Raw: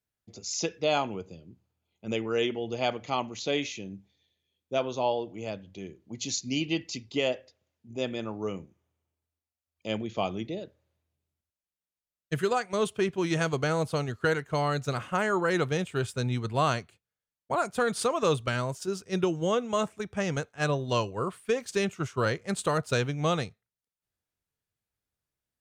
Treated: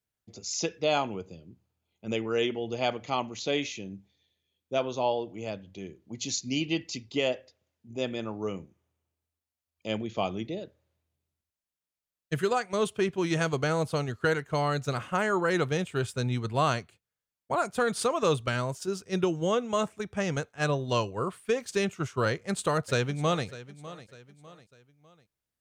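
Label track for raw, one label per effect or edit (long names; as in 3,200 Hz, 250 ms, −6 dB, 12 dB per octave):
22.280000	23.460000	delay throw 600 ms, feedback 40%, level −16.5 dB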